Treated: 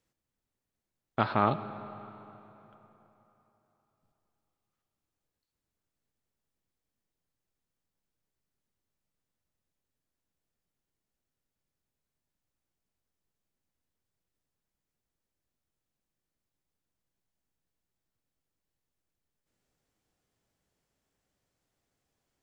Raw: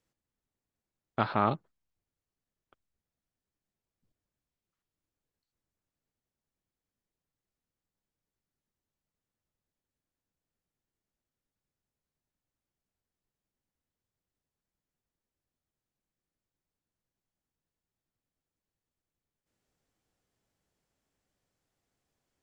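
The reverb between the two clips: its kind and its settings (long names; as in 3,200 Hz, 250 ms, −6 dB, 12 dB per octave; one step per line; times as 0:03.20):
comb and all-pass reverb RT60 3.6 s, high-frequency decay 0.75×, pre-delay 10 ms, DRR 12.5 dB
level +1 dB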